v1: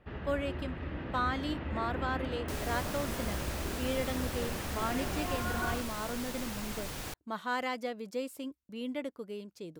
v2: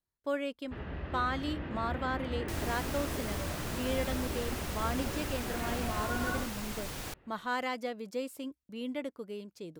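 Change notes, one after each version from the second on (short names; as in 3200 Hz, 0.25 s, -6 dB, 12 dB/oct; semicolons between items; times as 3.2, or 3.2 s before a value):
first sound: entry +0.65 s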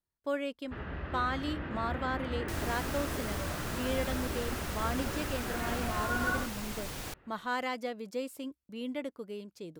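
first sound: add bell 1400 Hz +5.5 dB 0.82 oct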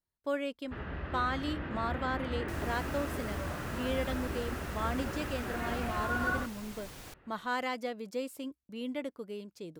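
second sound -7.5 dB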